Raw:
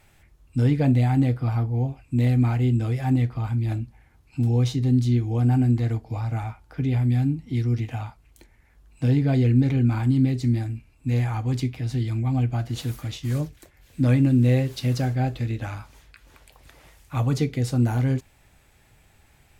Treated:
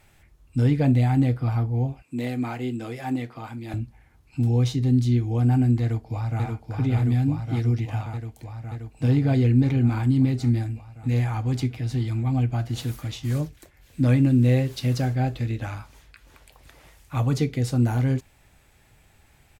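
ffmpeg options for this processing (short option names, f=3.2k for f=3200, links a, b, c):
-filter_complex "[0:a]asettb=1/sr,asplit=3[a][b][c];[a]atrim=end=2.024[d];[b]atrim=start=2.02:end=3.74,asetpts=PTS-STARTPTS,afade=t=in:d=0.004:c=qsin,afade=t=out:st=1.716:d=0.004:c=qsin,highpass=270[e];[c]atrim=start=3.736[f];[d][e]acrossfade=d=0.004:c1=hsin:c2=qsin[g];[g][f]acrossfade=d=0.004:c1=qsin:c2=hsin,asplit=2[h][i];[i]afade=t=in:st=5.81:d=0.01,afade=t=out:st=6.43:d=0.01,aecho=0:1:580|1160|1740|2320|2900|3480|4060|4640|5220|5800|6380|6960:0.707946|0.566357|0.453085|0.362468|0.289975|0.23198|0.185584|0.148467|0.118774|0.0950189|0.0760151|0.0608121[j];[h][j]amix=inputs=2:normalize=0"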